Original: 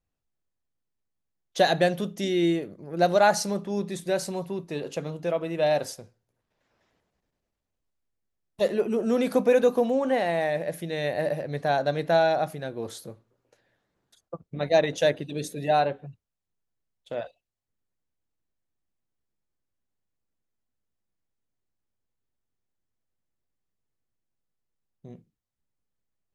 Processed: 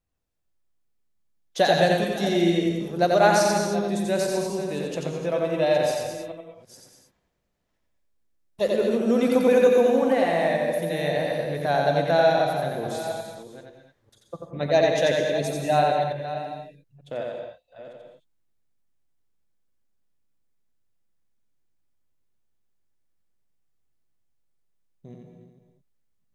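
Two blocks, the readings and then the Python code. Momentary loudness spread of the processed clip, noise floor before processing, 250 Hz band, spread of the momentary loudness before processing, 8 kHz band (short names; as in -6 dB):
16 LU, -83 dBFS, +3.5 dB, 15 LU, +3.0 dB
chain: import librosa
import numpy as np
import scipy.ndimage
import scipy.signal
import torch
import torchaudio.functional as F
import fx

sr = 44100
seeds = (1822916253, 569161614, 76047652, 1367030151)

y = fx.reverse_delay(x, sr, ms=486, wet_db=-11.5)
y = y + 10.0 ** (-3.0 / 20.0) * np.pad(y, (int(88 * sr / 1000.0), 0))[:len(y)]
y = fx.rev_gated(y, sr, seeds[0], gate_ms=240, shape='rising', drr_db=5.0)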